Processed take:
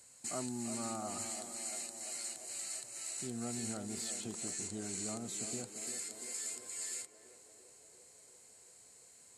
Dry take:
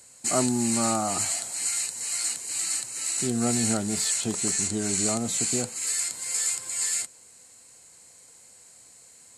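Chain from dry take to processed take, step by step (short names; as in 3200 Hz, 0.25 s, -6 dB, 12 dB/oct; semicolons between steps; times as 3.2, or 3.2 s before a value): compressor 1.5:1, threshold -42 dBFS, peak gain reduction 8.5 dB; narrowing echo 0.343 s, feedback 78%, band-pass 490 Hz, level -7 dB; gain -8 dB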